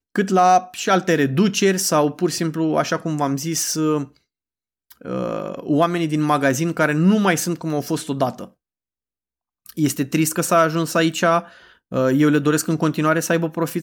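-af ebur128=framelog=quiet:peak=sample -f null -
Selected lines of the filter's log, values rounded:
Integrated loudness:
  I:         -19.4 LUFS
  Threshold: -29.8 LUFS
Loudness range:
  LRA:         4.5 LU
  Threshold: -40.7 LUFS
  LRA low:   -23.3 LUFS
  LRA high:  -18.8 LUFS
Sample peak:
  Peak:       -5.6 dBFS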